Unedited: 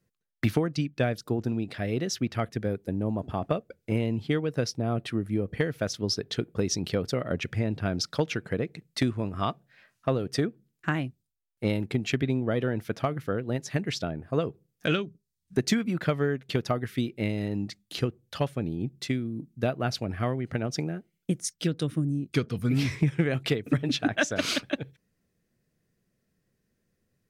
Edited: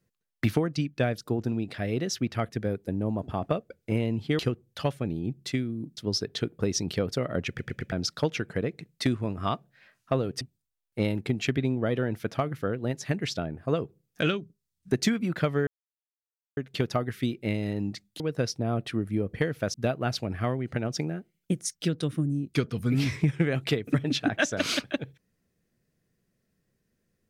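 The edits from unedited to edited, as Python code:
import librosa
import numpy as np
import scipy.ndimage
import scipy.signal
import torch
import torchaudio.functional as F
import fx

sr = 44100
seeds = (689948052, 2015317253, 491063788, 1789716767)

y = fx.edit(x, sr, fx.swap(start_s=4.39, length_s=1.54, other_s=17.95, other_length_s=1.58),
    fx.stutter_over(start_s=7.44, slice_s=0.11, count=4),
    fx.cut(start_s=10.37, length_s=0.69),
    fx.insert_silence(at_s=16.32, length_s=0.9), tone=tone)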